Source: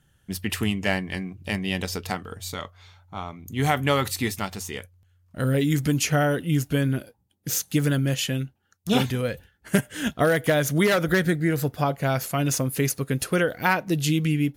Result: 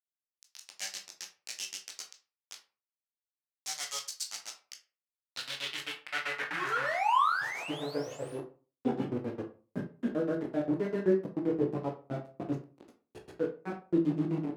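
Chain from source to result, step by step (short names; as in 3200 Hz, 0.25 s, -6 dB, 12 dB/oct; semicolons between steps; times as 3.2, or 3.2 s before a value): grains 0.1 s, grains 7.7/s; chorus voices 6, 0.16 Hz, delay 17 ms, depth 1.5 ms; painted sound rise, 6.5–8.39, 290–11000 Hz -31 dBFS; bit-crush 5-bit; band-pass sweep 6000 Hz -> 310 Hz, 4.88–8.81; on a send: reverb RT60 0.35 s, pre-delay 14 ms, DRR 2.5 dB; on the sum: gain +4.5 dB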